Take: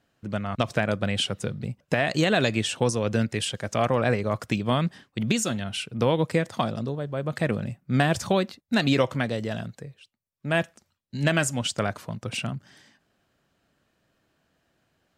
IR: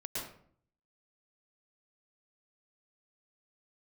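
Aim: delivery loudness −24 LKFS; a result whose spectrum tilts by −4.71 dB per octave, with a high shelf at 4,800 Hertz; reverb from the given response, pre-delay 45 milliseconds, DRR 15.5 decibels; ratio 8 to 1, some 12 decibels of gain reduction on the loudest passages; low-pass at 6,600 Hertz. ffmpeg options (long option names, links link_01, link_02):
-filter_complex "[0:a]lowpass=6600,highshelf=frequency=4800:gain=7,acompressor=threshold=-30dB:ratio=8,asplit=2[link_01][link_02];[1:a]atrim=start_sample=2205,adelay=45[link_03];[link_02][link_03]afir=irnorm=-1:irlink=0,volume=-17dB[link_04];[link_01][link_04]amix=inputs=2:normalize=0,volume=11dB"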